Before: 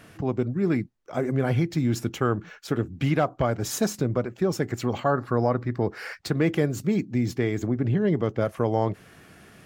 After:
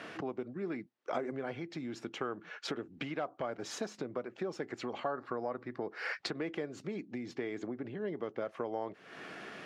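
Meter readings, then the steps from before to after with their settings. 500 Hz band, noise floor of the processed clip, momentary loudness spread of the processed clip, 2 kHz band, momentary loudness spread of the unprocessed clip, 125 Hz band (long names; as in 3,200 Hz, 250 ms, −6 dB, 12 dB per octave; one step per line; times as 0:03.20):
−11.5 dB, −61 dBFS, 4 LU, −7.5 dB, 6 LU, −24.0 dB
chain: downward compressor 8 to 1, threshold −38 dBFS, peak gain reduction 20 dB
band-pass filter 310–4,200 Hz
level +6.5 dB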